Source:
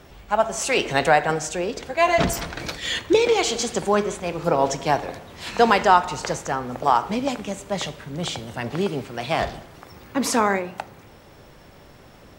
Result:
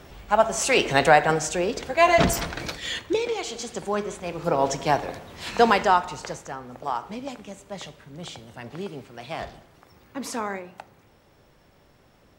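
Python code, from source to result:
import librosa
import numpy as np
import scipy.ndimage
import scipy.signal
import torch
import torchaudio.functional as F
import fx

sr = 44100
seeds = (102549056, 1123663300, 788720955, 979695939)

y = fx.gain(x, sr, db=fx.line((2.44, 1.0), (3.42, -10.0), (4.81, -1.0), (5.63, -1.0), (6.55, -10.0)))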